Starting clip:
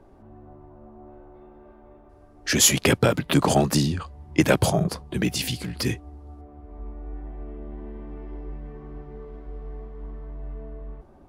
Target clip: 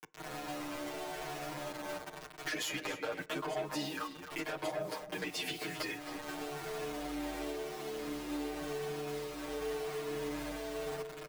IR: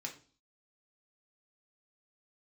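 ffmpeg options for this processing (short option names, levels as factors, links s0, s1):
-filter_complex "[0:a]acrossover=split=260 3300:gain=0.0891 1 0.224[s0][s1][s2];[s0][s1][s2]amix=inputs=3:normalize=0,acrusher=bits=7:mix=0:aa=0.000001,acrossover=split=88|470[s3][s4][s5];[s3]acompressor=threshold=0.00126:ratio=4[s6];[s4]acompressor=threshold=0.00794:ratio=4[s7];[s5]acompressor=threshold=0.0251:ratio=4[s8];[s6][s7][s8]amix=inputs=3:normalize=0,asoftclip=type=hard:threshold=0.0299,asplit=2[s9][s10];[s10]equalizer=f=510:w=0.82:g=9.5[s11];[1:a]atrim=start_sample=2205[s12];[s11][s12]afir=irnorm=-1:irlink=0,volume=0.141[s13];[s9][s13]amix=inputs=2:normalize=0,acompressor=threshold=0.00447:ratio=6,aecho=1:1:6.5:0.98,asplit=2[s14][s15];[s15]adelay=268.2,volume=0.355,highshelf=f=4000:g=-6.04[s16];[s14][s16]amix=inputs=2:normalize=0,asplit=2[s17][s18];[s18]adelay=8.7,afreqshift=-0.92[s19];[s17][s19]amix=inputs=2:normalize=1,volume=3.16"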